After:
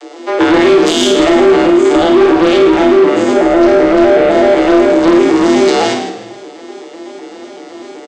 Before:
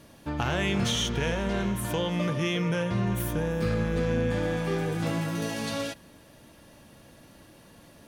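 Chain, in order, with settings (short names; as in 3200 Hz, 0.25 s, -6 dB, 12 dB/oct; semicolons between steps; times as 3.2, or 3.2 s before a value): arpeggiated vocoder minor triad, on C#3, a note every 0.126 s; 2.25–5.08 HPF 160 Hz 12 dB/oct; frequency shift +180 Hz; frequency-shifting echo 0.158 s, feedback 31%, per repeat -67 Hz, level -11 dB; soft clip -28.5 dBFS, distortion -12 dB; high shelf 2700 Hz +11 dB; flutter echo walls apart 8.9 m, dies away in 0.52 s; maximiser +26 dB; gain -1 dB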